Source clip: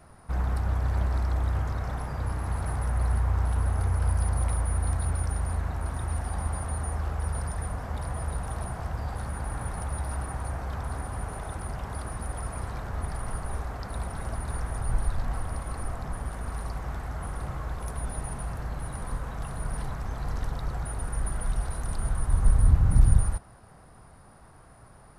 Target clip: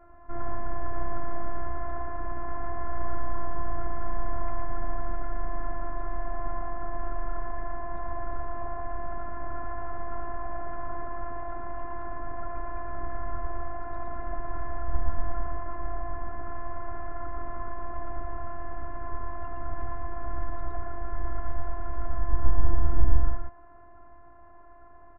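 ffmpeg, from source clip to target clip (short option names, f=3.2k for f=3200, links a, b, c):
-af "afftfilt=real='hypot(re,im)*cos(PI*b)':imag='0':win_size=512:overlap=0.75,lowpass=f=1.7k:w=0.5412,lowpass=f=1.7k:w=1.3066,aecho=1:1:115:0.668,volume=4dB"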